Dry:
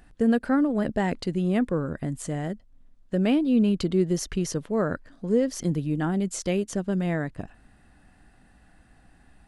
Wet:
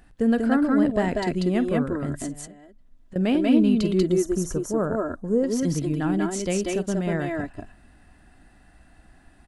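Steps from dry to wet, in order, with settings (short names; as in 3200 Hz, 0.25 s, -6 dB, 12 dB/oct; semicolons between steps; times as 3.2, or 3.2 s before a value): 2.27–3.16 compressor 12:1, threshold -43 dBFS, peak gain reduction 20.5 dB; 4.07–5.44 band shelf 3100 Hz -15.5 dB; tapped delay 48/189/192 ms -17/-3.5/-4 dB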